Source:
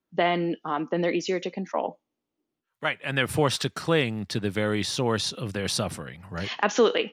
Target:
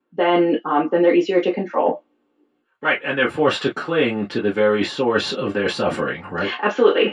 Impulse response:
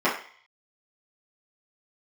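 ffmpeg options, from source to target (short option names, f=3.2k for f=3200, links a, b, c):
-filter_complex "[0:a]aemphasis=mode=reproduction:type=50fm,areverse,acompressor=threshold=-33dB:ratio=4,areverse[a];[1:a]atrim=start_sample=2205,atrim=end_sample=3087,asetrate=61740,aresample=44100[b];[a][b]afir=irnorm=-1:irlink=0,volume=3dB"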